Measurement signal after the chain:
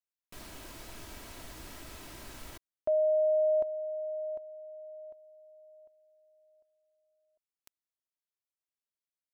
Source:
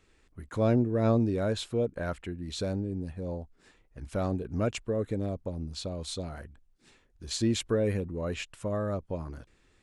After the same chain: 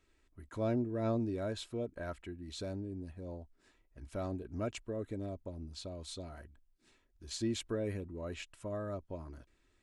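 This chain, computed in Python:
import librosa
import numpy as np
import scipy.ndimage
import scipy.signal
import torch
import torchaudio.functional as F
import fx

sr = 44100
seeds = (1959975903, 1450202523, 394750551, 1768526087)

y = x + 0.37 * np.pad(x, (int(3.1 * sr / 1000.0), 0))[:len(x)]
y = y * 10.0 ** (-8.5 / 20.0)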